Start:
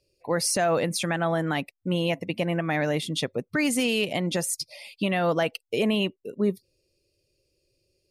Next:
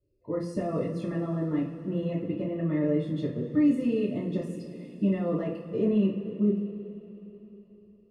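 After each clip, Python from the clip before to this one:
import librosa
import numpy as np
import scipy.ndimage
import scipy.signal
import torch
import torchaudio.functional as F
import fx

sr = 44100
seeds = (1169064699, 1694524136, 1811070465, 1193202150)

y = scipy.signal.lfilter(np.full(57, 1.0 / 57), 1.0, x)
y = fx.rev_double_slope(y, sr, seeds[0], early_s=0.36, late_s=3.9, knee_db=-18, drr_db=-6.5)
y = y * 10.0 ** (-3.5 / 20.0)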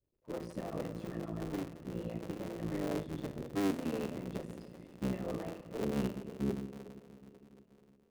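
y = fx.cycle_switch(x, sr, every=3, mode='muted')
y = y * 10.0 ** (-8.5 / 20.0)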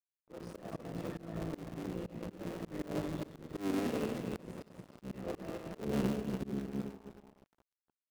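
y = fx.reverse_delay_fb(x, sr, ms=155, feedback_pct=49, wet_db=-4.0)
y = np.sign(y) * np.maximum(np.abs(y) - 10.0 ** (-50.5 / 20.0), 0.0)
y = fx.auto_swell(y, sr, attack_ms=178.0)
y = y * 10.0 ** (1.0 / 20.0)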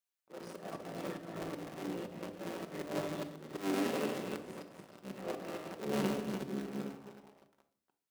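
y = fx.highpass(x, sr, hz=490.0, slope=6)
y = fx.room_shoebox(y, sr, seeds[1], volume_m3=720.0, walls='furnished', distance_m=1.1)
y = y * 10.0 ** (3.5 / 20.0)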